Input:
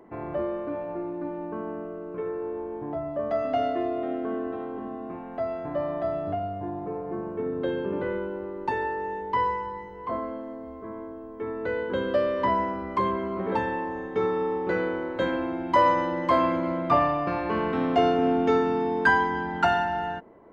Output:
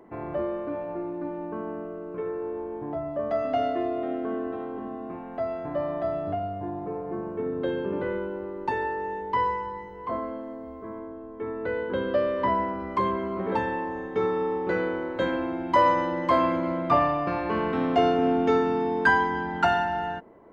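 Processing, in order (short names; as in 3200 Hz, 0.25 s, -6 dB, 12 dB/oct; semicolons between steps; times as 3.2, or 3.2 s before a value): 10.99–12.8 air absorption 110 m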